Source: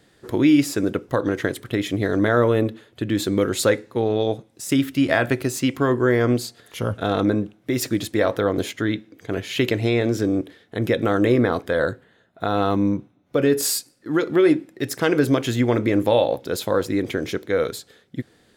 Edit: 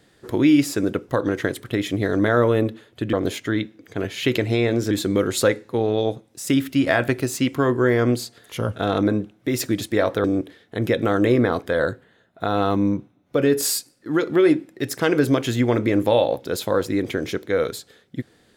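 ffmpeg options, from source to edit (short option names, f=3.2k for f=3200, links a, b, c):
-filter_complex "[0:a]asplit=4[a][b][c][d];[a]atrim=end=3.132[e];[b]atrim=start=8.458:end=10.242[f];[c]atrim=start=3.128:end=8.462[g];[d]atrim=start=10.238[h];[e][f]acrossfade=d=0.004:c1=hsin:c2=hsin[i];[i][g]acrossfade=d=0.004:c1=hsin:c2=hsin[j];[j][h]acrossfade=d=0.004:c1=hsin:c2=hsin"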